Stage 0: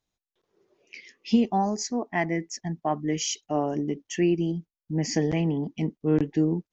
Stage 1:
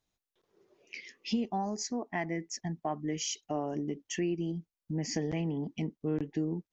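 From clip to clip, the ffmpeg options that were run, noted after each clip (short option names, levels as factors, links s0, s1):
-af "acompressor=threshold=0.0158:ratio=2"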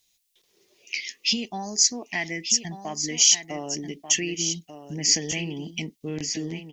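-af "aexciter=amount=8.8:drive=1.3:freq=2000,aecho=1:1:1189:0.316"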